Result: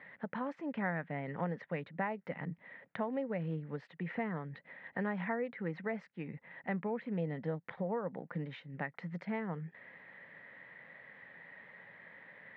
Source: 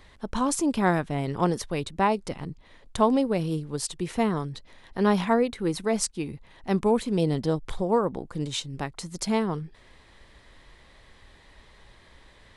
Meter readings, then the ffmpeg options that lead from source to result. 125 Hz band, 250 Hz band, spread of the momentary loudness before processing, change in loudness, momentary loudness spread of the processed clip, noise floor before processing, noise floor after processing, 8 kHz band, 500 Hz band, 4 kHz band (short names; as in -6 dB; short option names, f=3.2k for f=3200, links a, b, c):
-10.0 dB, -13.0 dB, 13 LU, -13.0 dB, 16 LU, -55 dBFS, -69 dBFS, under -40 dB, -13.0 dB, -23.5 dB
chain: -af "tiltshelf=f=970:g=-3.5,acompressor=threshold=-36dB:ratio=3,highpass=f=140:w=0.5412,highpass=f=140:w=1.3066,equalizer=f=170:t=q:w=4:g=6,equalizer=f=360:t=q:w=4:g=-8,equalizer=f=530:t=q:w=4:g=5,equalizer=f=1.1k:t=q:w=4:g=-6,equalizer=f=1.9k:t=q:w=4:g=9,lowpass=f=2.1k:w=0.5412,lowpass=f=2.1k:w=1.3066,volume=-1dB"